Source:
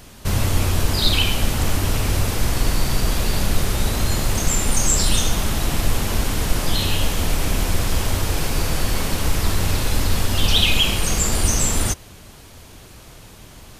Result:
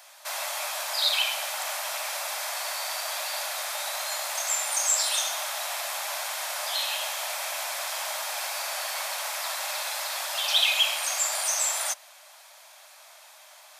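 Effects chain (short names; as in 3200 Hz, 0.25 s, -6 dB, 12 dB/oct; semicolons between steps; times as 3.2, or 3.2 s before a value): Chebyshev high-pass 590 Hz, order 6; notch 2900 Hz, Q 14; gain -3 dB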